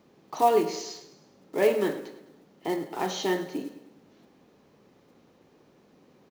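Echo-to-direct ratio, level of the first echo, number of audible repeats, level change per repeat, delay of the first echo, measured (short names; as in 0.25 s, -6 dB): -13.5 dB, -14.5 dB, 4, -6.0 dB, 0.104 s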